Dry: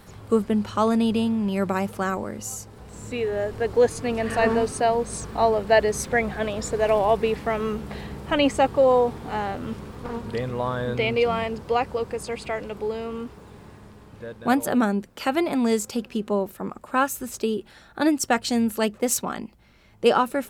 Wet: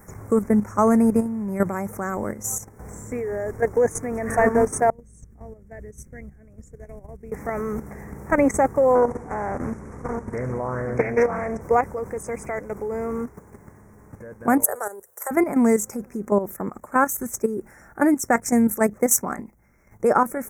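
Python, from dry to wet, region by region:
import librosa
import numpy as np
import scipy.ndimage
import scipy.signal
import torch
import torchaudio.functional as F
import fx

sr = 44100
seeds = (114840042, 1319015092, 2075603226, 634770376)

y = fx.chain(x, sr, fx.tone_stack(knobs='10-0-1'),
    fx.doppler_dist(depth_ms=0.11), at=(4.9, 7.32))
y = fx.chain(y, sr, fx.lowpass(hz=10000.0, slope=24),
    fx.echo_feedback(ms=71, feedback_pct=52, wet_db=-16),
    fx.doppler_dist(depth_ms=0.4), at=(8.95, 11.61))
y = fx.chain(y, sr, fx.highpass(hz=480.0, slope=6),
    fx.level_steps(step_db=9),
    fx.curve_eq(hz=(100.0, 270.0, 410.0, 1900.0, 3000.0, 4700.0, 9400.0), db=(0, -30, 2, -3, -28, -1, 14)), at=(14.64, 15.31))
y = scipy.signal.sosfilt(scipy.signal.ellip(3, 1.0, 40, [2100.0, 5900.0], 'bandstop', fs=sr, output='sos'), y)
y = fx.high_shelf(y, sr, hz=10000.0, db=8.5)
y = fx.level_steps(y, sr, step_db=11)
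y = F.gain(torch.from_numpy(y), 6.0).numpy()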